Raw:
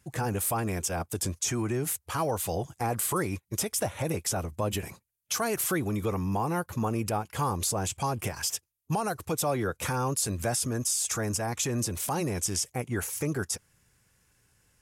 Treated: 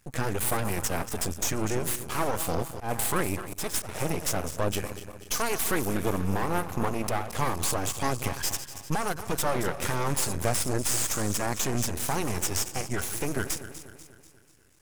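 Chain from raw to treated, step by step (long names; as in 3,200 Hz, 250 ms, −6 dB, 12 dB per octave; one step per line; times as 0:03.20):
feedback delay that plays each chunk backwards 122 ms, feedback 70%, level −11.5 dB
0:02.65–0:03.89: volume swells 125 ms
half-wave rectification
level +5 dB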